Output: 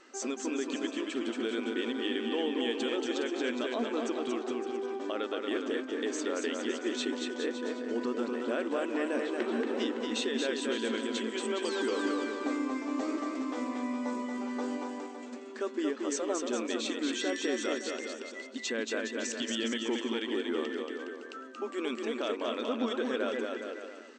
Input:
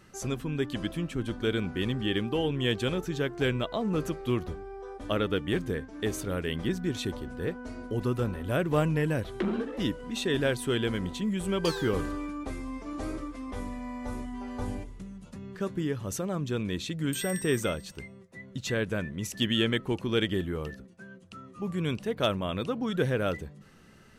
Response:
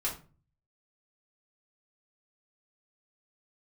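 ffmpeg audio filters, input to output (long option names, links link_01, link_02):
-filter_complex "[0:a]afftfilt=real='re*between(b*sr/4096,220,8300)':imag='im*between(b*sr/4096,220,8300)':win_size=4096:overlap=0.75,alimiter=level_in=1.5dB:limit=-24dB:level=0:latency=1:release=142,volume=-1.5dB,aeval=exprs='0.2*(cos(1*acos(clip(val(0)/0.2,-1,1)))-cos(1*PI/2))+0.00355*(cos(2*acos(clip(val(0)/0.2,-1,1)))-cos(2*PI/2))+0.01*(cos(5*acos(clip(val(0)/0.2,-1,1)))-cos(5*PI/2))':channel_layout=same,asplit=2[link_01][link_02];[link_02]aecho=0:1:230|414|561.2|679|773.2:0.631|0.398|0.251|0.158|0.1[link_03];[link_01][link_03]amix=inputs=2:normalize=0"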